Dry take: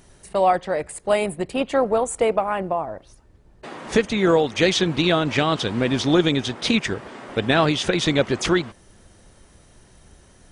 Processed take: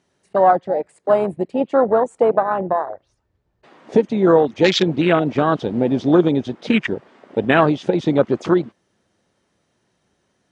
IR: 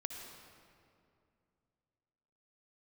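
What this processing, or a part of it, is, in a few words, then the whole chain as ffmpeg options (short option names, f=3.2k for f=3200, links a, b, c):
over-cleaned archive recording: -filter_complex "[0:a]highpass=150,lowpass=6.1k,afwtdn=0.0708,asplit=3[a][b][c];[a]afade=t=out:st=2.83:d=0.02[d];[b]asubboost=boost=7.5:cutoff=86,afade=t=in:st=2.83:d=0.02,afade=t=out:st=3.69:d=0.02[e];[c]afade=t=in:st=3.69:d=0.02[f];[d][e][f]amix=inputs=3:normalize=0,volume=4.5dB"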